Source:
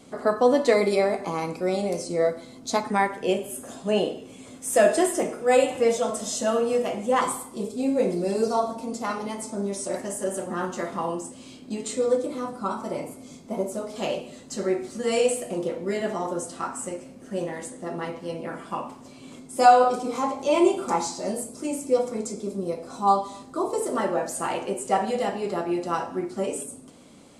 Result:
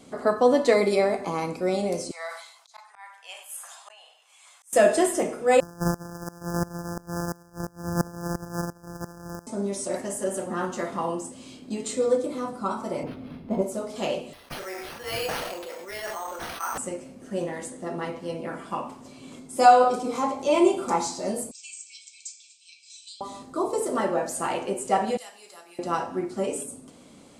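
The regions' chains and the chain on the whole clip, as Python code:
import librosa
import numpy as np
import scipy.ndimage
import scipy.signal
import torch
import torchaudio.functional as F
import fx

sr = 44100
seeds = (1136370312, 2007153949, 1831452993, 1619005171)

y = fx.chain(x, sr, fx.steep_highpass(hz=830.0, slope=36),
    fx.auto_swell(attack_ms=757.0),
    fx.sustainer(db_per_s=75.0), at=(2.11, 4.73))
y = fx.chain(y, sr, fx.sample_sort(block=256),
    fx.brickwall_bandstop(low_hz=1800.0, high_hz=4700.0),
    fx.tremolo_decay(direction='swelling', hz=2.9, depth_db=20), at=(5.6, 9.47))
y = fx.chain(y, sr, fx.low_shelf(hz=200.0, db=11.5),
    fx.resample_linear(factor=6), at=(13.03, 13.62))
y = fx.chain(y, sr, fx.highpass(hz=930.0, slope=12),
    fx.resample_bad(factor=6, down='none', up='hold'),
    fx.sustainer(db_per_s=27.0), at=(14.33, 16.78))
y = fx.chain(y, sr, fx.brickwall_bandpass(low_hz=2200.0, high_hz=8500.0),
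    fx.band_squash(depth_pct=40), at=(21.51, 23.21))
y = fx.chain(y, sr, fx.differentiator(),
    fx.hum_notches(base_hz=50, count=9), at=(25.17, 25.79))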